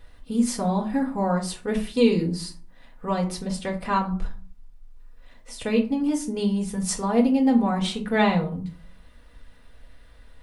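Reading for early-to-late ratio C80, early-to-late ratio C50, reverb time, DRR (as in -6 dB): 17.0 dB, 11.5 dB, 0.40 s, -1.5 dB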